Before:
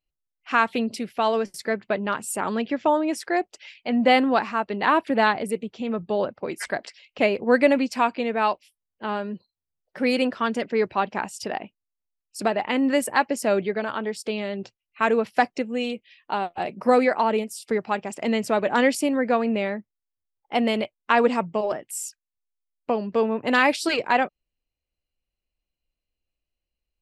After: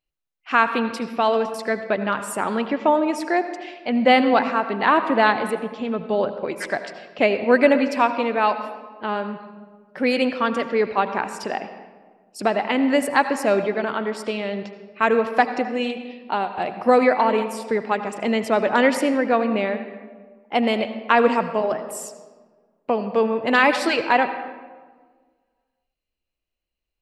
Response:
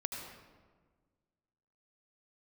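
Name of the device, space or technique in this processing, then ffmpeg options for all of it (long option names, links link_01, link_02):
filtered reverb send: -filter_complex "[0:a]asplit=2[link_01][link_02];[link_02]highpass=frequency=240:poles=1,lowpass=5000[link_03];[1:a]atrim=start_sample=2205[link_04];[link_03][link_04]afir=irnorm=-1:irlink=0,volume=-2.5dB[link_05];[link_01][link_05]amix=inputs=2:normalize=0,volume=-1.5dB"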